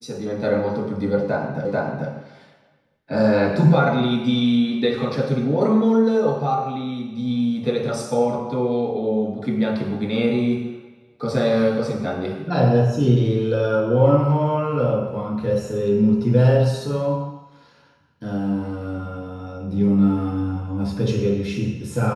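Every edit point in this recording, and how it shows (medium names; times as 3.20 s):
1.65 s: repeat of the last 0.44 s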